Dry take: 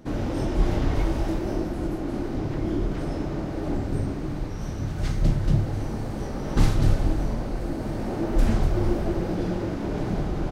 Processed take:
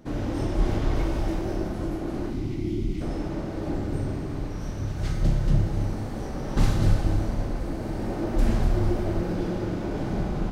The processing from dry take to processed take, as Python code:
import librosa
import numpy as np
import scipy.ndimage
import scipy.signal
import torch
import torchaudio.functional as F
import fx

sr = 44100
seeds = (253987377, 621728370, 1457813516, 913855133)

y = fx.spec_box(x, sr, start_s=2.31, length_s=0.7, low_hz=390.0, high_hz=1900.0, gain_db=-17)
y = fx.rev_schroeder(y, sr, rt60_s=1.9, comb_ms=30, drr_db=4.5)
y = F.gain(torch.from_numpy(y), -2.5).numpy()